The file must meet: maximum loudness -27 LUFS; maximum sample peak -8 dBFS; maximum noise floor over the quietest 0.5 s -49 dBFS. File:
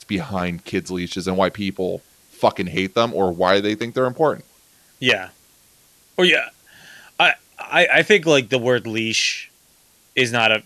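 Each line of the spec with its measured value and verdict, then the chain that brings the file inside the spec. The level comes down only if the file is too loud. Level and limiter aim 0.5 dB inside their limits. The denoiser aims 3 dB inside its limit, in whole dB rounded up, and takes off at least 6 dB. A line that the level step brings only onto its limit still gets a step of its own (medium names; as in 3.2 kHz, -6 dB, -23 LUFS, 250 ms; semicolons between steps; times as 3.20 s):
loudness -19.0 LUFS: fail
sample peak -2.5 dBFS: fail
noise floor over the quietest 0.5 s -56 dBFS: pass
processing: trim -8.5 dB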